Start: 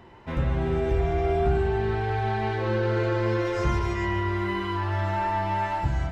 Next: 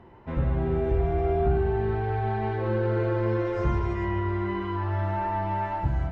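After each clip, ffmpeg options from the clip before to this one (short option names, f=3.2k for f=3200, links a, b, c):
-af "lowpass=f=1.1k:p=1"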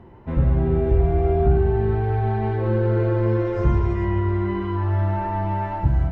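-af "lowshelf=f=450:g=7.5"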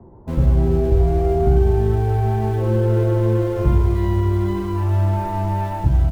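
-filter_complex "[0:a]acrossover=split=110|400|1100[a][b][c][d];[a]aecho=1:1:81:0.473[e];[d]acrusher=bits=5:dc=4:mix=0:aa=0.000001[f];[e][b][c][f]amix=inputs=4:normalize=0,volume=2dB"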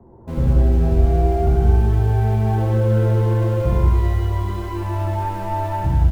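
-af "bandreject=f=50:t=h:w=6,bandreject=f=100:t=h:w=6,bandreject=f=150:t=h:w=6,bandreject=f=200:t=h:w=6,bandreject=f=250:t=h:w=6,bandreject=f=300:t=h:w=6,bandreject=f=350:t=h:w=6,aecho=1:1:69.97|180.8:0.794|0.794,volume=-2.5dB"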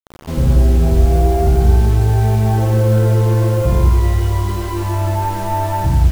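-filter_complex "[0:a]asplit=2[a][b];[b]asoftclip=type=tanh:threshold=-19dB,volume=-7dB[c];[a][c]amix=inputs=2:normalize=0,acrusher=bits=5:mix=0:aa=0.000001,volume=2dB"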